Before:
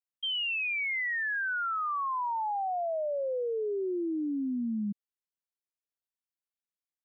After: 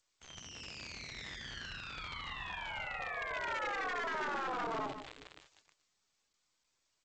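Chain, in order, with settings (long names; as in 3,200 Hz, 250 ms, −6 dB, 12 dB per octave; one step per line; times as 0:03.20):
low-pass filter 2,000 Hz 6 dB per octave
parametric band 280 Hz +10 dB 3 octaves
four-comb reverb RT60 1.4 s, combs from 33 ms, DRR 14 dB
in parallel at +1 dB: downward compressor 5 to 1, threshold −38 dBFS, peak gain reduction 16 dB
on the sum: harmonic generator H 3 −14 dB, 6 −26 dB, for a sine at −14.5 dBFS
hard clipping −21 dBFS, distortion −14 dB
surface crackle 100 per second −32 dBFS
on a send: single-tap delay 146 ms −10 dB
on the sum: gate on every frequency bin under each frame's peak −20 dB weak
level +3.5 dB
G.722 64 kbit/s 16,000 Hz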